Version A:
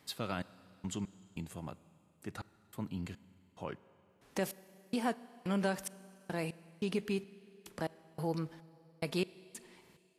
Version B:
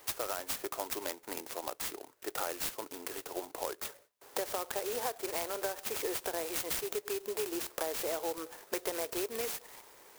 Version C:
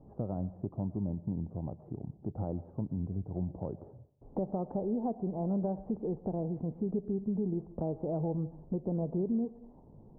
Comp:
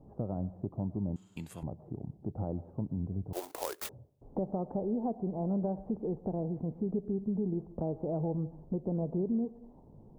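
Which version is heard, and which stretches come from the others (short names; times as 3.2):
C
1.16–1.63 from A
3.33–3.89 from B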